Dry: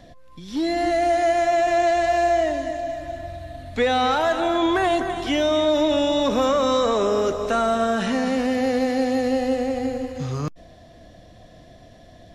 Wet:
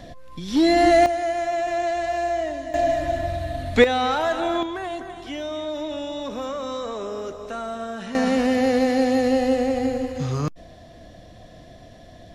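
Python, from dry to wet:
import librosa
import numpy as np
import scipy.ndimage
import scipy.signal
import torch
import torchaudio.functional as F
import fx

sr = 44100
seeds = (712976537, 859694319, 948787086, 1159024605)

y = fx.gain(x, sr, db=fx.steps((0.0, 6.0), (1.06, -5.0), (2.74, 7.5), (3.84, -2.0), (4.63, -10.0), (8.15, 2.0)))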